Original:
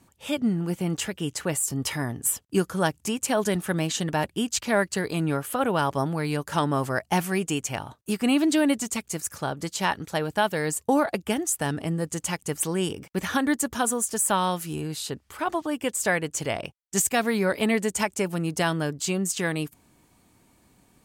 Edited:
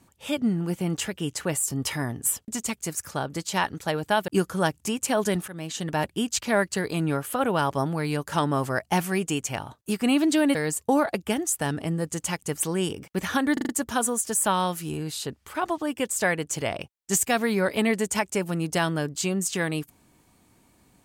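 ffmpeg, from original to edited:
-filter_complex "[0:a]asplit=9[a][b][c][d][e][f][g][h][i];[a]atrim=end=2.482[j];[b]atrim=start=8.748:end=10.552[k];[c]atrim=start=2.478:end=3.68,asetpts=PTS-STARTPTS,afade=t=out:st=1.198:d=0.004:c=hsin:silence=0.149624[l];[d]atrim=start=3.68:end=8.752,asetpts=PTS-STARTPTS,afade=t=in:d=0.54:silence=0.149624[m];[e]atrim=start=10.548:end=13.572[n];[f]atrim=start=13.528:end=13.572[o];[g]atrim=start=13.528:end=13.572[p];[h]atrim=start=13.528:end=13.572[q];[i]atrim=start=13.528[r];[j][k]acrossfade=d=0.004:c1=hsin:c2=hsin[s];[l][m]concat=n=2:v=0:a=1[t];[s][t]acrossfade=d=0.004:c1=hsin:c2=hsin[u];[u][n]acrossfade=d=0.004:c1=hsin:c2=hsin[v];[v][o]acrossfade=d=0.004:c1=hsin:c2=hsin[w];[w][p]acrossfade=d=0.004:c1=hsin:c2=hsin[x];[x][q]acrossfade=d=0.004:c1=hsin:c2=hsin[y];[y][r]acrossfade=d=0.004:c1=hsin:c2=hsin"

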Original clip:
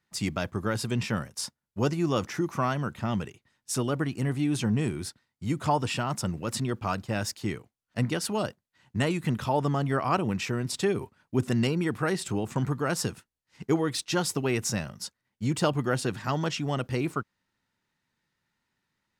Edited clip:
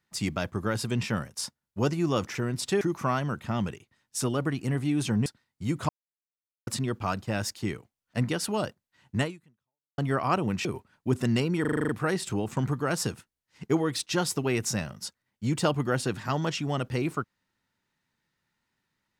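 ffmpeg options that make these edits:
-filter_complex "[0:a]asplit=15[a][b][c][d][e][f][g][h][i][j][k][l][m][n][o];[a]atrim=end=2.352[p];[b]atrim=start=10.458:end=10.922[q];[c]atrim=start=2.348:end=4.802[r];[d]atrim=start=5.068:end=5.7,asetpts=PTS-STARTPTS,afade=t=out:st=0.628:d=0.004:c=hsin[s];[e]atrim=start=5.7:end=6.48,asetpts=PTS-STARTPTS,volume=0[t];[f]atrim=start=6.48:end=9.79,asetpts=PTS-STARTPTS,afade=t=in:d=0.004:c=hsin,afade=t=out:st=2.55:d=0.76:c=exp[u];[g]atrim=start=9.79:end=10.462,asetpts=PTS-STARTPTS,afade=t=in:d=0.004:c=hsin[v];[h]atrim=start=10.918:end=11.922[w];[i]atrim=start=11.878:end=11.922[x];[j]atrim=start=11.878:end=11.922[y];[k]atrim=start=11.878:end=11.922[z];[l]atrim=start=11.878:end=11.922[aa];[m]atrim=start=11.878:end=11.922[ab];[n]atrim=start=11.878:end=11.922[ac];[o]atrim=start=11.878[ad];[p][q]acrossfade=d=0.004:c1=hsin:c2=hsin[ae];[ae][r]acrossfade=d=0.004:c1=hsin:c2=hsin[af];[s][t][u][v]concat=n=4:v=0:a=1[ag];[af][ag]acrossfade=d=0.004:c1=hsin:c2=hsin[ah];[ah][w]acrossfade=d=0.004:c1=hsin:c2=hsin[ai];[ai][x]acrossfade=d=0.004:c1=hsin:c2=hsin[aj];[aj][y]acrossfade=d=0.004:c1=hsin:c2=hsin[ak];[ak][z]acrossfade=d=0.004:c1=hsin:c2=hsin[al];[al][aa]acrossfade=d=0.004:c1=hsin:c2=hsin[am];[am][ab]acrossfade=d=0.004:c1=hsin:c2=hsin[an];[an][ac]acrossfade=d=0.004:c1=hsin:c2=hsin[ao];[ao][ad]acrossfade=d=0.004:c1=hsin:c2=hsin"

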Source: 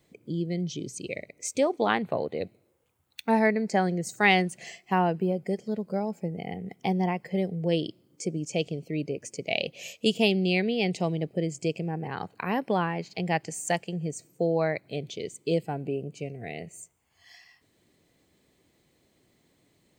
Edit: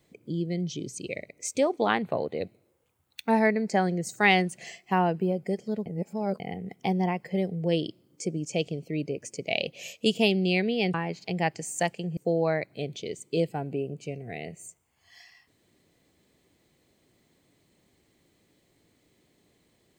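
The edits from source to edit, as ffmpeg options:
-filter_complex "[0:a]asplit=5[a][b][c][d][e];[a]atrim=end=5.862[f];[b]atrim=start=5.858:end=6.402,asetpts=PTS-STARTPTS,areverse[g];[c]atrim=start=6.398:end=10.942[h];[d]atrim=start=12.828:end=14.062[i];[e]atrim=start=14.308[j];[f][g]acrossfade=d=0.004:c1=hsin:c2=hsin[k];[k][h]acrossfade=d=0.004:c1=hsin:c2=hsin[l];[l][i]acrossfade=d=0.004:c1=hsin:c2=hsin[m];[m][j]acrossfade=d=0.004:c1=hsin:c2=hsin"

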